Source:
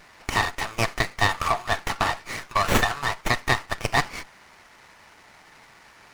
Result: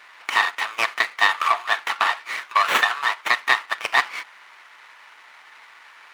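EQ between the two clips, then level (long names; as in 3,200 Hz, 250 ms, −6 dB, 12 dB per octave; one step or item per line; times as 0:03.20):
high-pass filter 480 Hz 12 dB per octave
flat-topped bell 1,900 Hz +8.5 dB 2.3 octaves
−3.0 dB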